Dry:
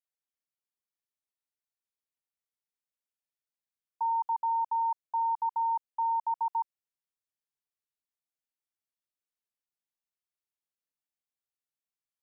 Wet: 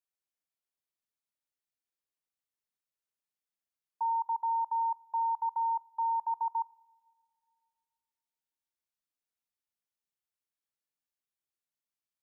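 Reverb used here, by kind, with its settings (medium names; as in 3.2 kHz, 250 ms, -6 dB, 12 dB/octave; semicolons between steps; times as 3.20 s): two-slope reverb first 0.47 s, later 2.4 s, from -17 dB, DRR 19 dB; trim -2 dB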